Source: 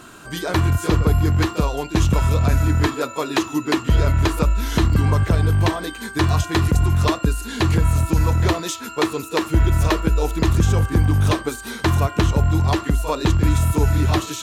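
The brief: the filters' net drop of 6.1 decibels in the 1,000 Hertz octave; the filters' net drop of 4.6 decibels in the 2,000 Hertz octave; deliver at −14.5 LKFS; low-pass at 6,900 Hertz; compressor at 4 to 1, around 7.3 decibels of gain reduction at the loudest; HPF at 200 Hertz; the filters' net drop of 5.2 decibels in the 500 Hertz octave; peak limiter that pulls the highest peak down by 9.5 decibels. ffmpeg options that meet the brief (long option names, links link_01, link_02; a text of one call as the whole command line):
ffmpeg -i in.wav -af "highpass=200,lowpass=6900,equalizer=frequency=500:width_type=o:gain=-5.5,equalizer=frequency=1000:width_type=o:gain=-5,equalizer=frequency=2000:width_type=o:gain=-4,acompressor=threshold=-28dB:ratio=4,volume=20dB,alimiter=limit=-4dB:level=0:latency=1" out.wav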